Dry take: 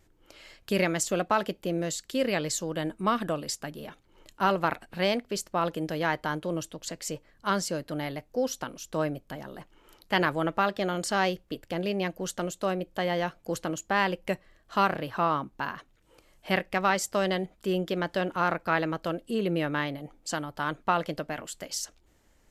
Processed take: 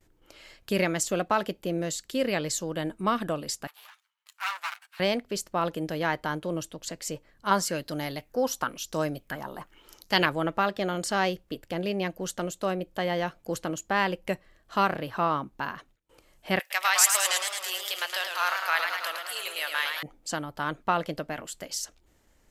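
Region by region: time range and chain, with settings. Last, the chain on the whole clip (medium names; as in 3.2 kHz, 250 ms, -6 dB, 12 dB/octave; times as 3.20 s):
3.67–5.00 s: comb filter that takes the minimum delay 9.2 ms + high-pass 1.1 kHz 24 dB/octave
7.51–10.26 s: treble shelf 9.4 kHz +8 dB + sweeping bell 1 Hz 890–6400 Hz +12 dB
16.59–20.03 s: Bessel high-pass 870 Hz, order 4 + tilt EQ +4.5 dB/octave + modulated delay 108 ms, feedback 70%, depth 151 cents, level -5.5 dB
whole clip: gate with hold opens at -55 dBFS; treble shelf 12 kHz +3 dB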